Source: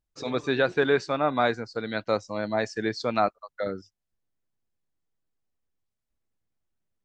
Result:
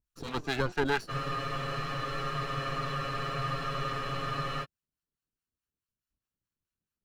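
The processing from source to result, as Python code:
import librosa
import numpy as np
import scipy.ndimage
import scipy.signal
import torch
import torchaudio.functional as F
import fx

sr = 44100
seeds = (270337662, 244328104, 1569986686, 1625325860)

y = fx.lower_of_two(x, sr, delay_ms=0.7)
y = fx.harmonic_tremolo(y, sr, hz=4.7, depth_pct=70, crossover_hz=690.0)
y = fx.spec_freeze(y, sr, seeds[0], at_s=1.12, hold_s=3.52)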